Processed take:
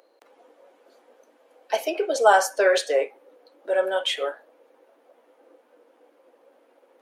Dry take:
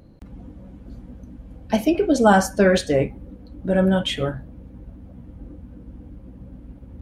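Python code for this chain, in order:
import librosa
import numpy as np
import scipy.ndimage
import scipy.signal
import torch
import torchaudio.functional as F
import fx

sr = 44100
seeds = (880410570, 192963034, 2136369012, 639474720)

y = scipy.signal.sosfilt(scipy.signal.butter(6, 430.0, 'highpass', fs=sr, output='sos'), x)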